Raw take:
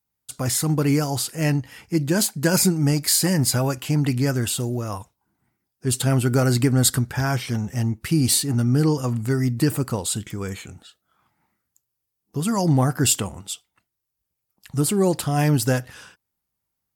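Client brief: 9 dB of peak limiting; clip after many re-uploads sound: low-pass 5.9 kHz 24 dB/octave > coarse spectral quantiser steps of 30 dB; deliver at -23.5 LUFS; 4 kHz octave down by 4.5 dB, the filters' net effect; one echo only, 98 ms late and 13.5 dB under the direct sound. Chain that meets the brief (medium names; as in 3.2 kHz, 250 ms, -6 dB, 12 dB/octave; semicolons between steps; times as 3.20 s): peaking EQ 4 kHz -5 dB; peak limiter -15.5 dBFS; low-pass 5.9 kHz 24 dB/octave; delay 98 ms -13.5 dB; coarse spectral quantiser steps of 30 dB; trim +3 dB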